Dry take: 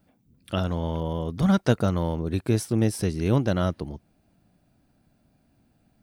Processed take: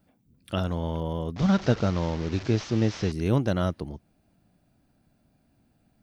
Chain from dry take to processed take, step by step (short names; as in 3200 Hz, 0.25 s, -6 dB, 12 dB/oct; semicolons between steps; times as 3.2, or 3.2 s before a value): 1.36–3.12 delta modulation 32 kbps, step -31.5 dBFS; gain -1.5 dB